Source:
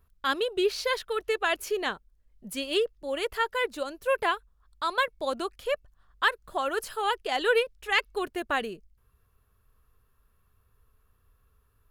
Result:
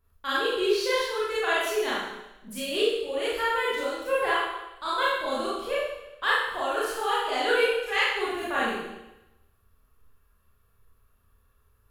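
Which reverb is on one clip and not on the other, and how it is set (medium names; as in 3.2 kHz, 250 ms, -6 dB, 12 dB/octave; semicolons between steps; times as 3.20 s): Schroeder reverb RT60 0.94 s, combs from 27 ms, DRR -9 dB; trim -7 dB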